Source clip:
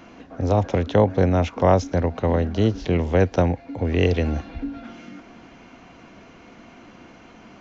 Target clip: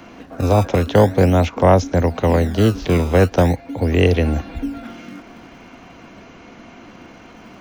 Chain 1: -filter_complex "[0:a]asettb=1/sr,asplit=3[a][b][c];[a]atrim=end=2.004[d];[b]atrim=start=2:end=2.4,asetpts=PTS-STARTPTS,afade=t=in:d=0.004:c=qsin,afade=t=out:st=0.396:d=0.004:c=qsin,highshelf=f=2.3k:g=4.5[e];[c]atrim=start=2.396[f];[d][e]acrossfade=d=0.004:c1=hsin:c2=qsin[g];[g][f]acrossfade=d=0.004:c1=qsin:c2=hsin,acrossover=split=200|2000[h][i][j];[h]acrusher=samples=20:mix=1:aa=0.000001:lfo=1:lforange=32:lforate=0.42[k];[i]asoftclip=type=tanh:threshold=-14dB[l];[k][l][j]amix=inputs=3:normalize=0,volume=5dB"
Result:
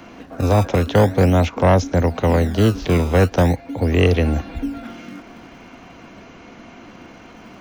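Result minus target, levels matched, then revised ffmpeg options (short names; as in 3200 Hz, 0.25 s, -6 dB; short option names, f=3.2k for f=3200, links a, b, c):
soft clip: distortion +12 dB
-filter_complex "[0:a]asettb=1/sr,asplit=3[a][b][c];[a]atrim=end=2.004[d];[b]atrim=start=2:end=2.4,asetpts=PTS-STARTPTS,afade=t=in:d=0.004:c=qsin,afade=t=out:st=0.396:d=0.004:c=qsin,highshelf=f=2.3k:g=4.5[e];[c]atrim=start=2.396[f];[d][e]acrossfade=d=0.004:c1=hsin:c2=qsin[g];[g][f]acrossfade=d=0.004:c1=qsin:c2=hsin,acrossover=split=200|2000[h][i][j];[h]acrusher=samples=20:mix=1:aa=0.000001:lfo=1:lforange=32:lforate=0.42[k];[i]asoftclip=type=tanh:threshold=-5.5dB[l];[k][l][j]amix=inputs=3:normalize=0,volume=5dB"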